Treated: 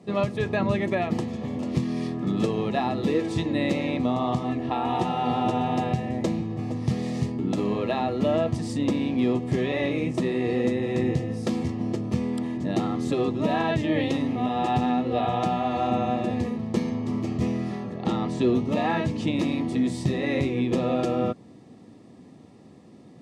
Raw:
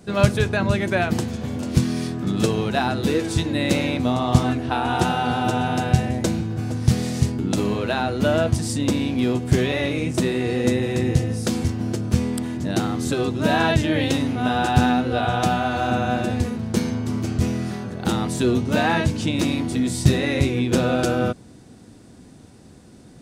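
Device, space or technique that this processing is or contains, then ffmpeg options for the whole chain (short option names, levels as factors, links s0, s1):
PA system with an anti-feedback notch: -filter_complex "[0:a]asettb=1/sr,asplit=3[s0][s1][s2];[s0]atrim=end=17.974[s3];[s1]atrim=start=17.97:end=18.55,asetpts=PTS-STARTPTS,afade=t=in:d=0.004:c=qsin,afade=t=out:st=0.576:d=0.004:c=qsin,lowpass=7000[s4];[s2]atrim=start=18.546[s5];[s3][s4]acrossfade=d=0.004:c1=hsin:c2=qsin[s6];[s6][s5]acrossfade=d=0.004:c1=qsin:c2=hsin,highpass=140,asuperstop=centerf=1500:order=12:qfactor=6.1,alimiter=limit=0.266:level=0:latency=1:release=280,aemphasis=mode=reproduction:type=75fm,volume=0.794"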